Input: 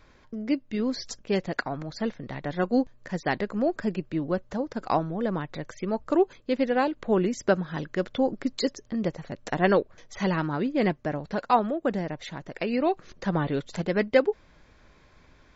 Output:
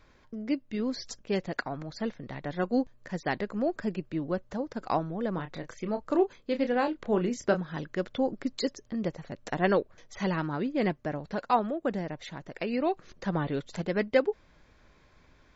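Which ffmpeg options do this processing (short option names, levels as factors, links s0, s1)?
-filter_complex "[0:a]asettb=1/sr,asplit=3[s0][s1][s2];[s0]atrim=end=5.344[s3];[s1]atrim=start=5.34:end=7.61,asetpts=PTS-STARTPTS,afade=t=in:d=0.004:c=qsin,afade=t=out:st=2.266:d=0.004:c=qsin,asplit=2[s4][s5];[s5]adelay=29,volume=0.355[s6];[s4][s6]amix=inputs=2:normalize=0,atrim=end_sample=100107[s7];[s2]atrim=start=7.606[s8];[s3][s7]acrossfade=d=0.004:c1=hsin:c2=qsin[s9];[s9][s8]acrossfade=d=0.004:c1=qsin:c2=hsin,volume=0.668"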